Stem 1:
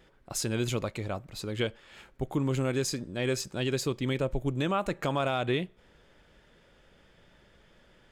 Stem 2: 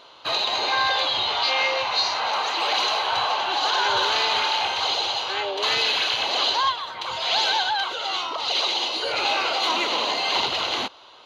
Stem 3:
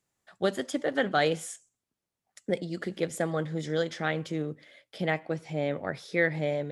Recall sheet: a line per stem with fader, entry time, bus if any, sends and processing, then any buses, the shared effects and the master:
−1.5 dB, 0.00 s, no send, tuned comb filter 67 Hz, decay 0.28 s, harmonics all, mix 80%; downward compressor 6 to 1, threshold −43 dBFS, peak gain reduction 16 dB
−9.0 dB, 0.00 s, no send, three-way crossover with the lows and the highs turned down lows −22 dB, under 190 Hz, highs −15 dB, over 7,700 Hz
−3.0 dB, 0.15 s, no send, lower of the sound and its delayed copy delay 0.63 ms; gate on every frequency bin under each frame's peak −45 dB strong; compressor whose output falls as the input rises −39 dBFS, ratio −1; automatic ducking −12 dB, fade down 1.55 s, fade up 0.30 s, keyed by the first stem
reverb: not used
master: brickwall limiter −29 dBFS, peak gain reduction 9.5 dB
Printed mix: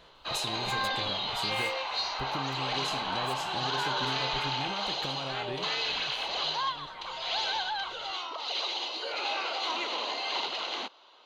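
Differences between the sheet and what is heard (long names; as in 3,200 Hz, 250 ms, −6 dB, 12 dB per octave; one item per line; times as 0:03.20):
stem 1 −1.5 dB → +6.5 dB
master: missing brickwall limiter −29 dBFS, peak gain reduction 9.5 dB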